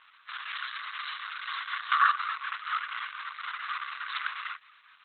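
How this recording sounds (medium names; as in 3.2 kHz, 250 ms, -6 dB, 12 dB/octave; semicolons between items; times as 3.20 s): a quantiser's noise floor 12-bit, dither none; tremolo triangle 4.1 Hz, depth 35%; Opus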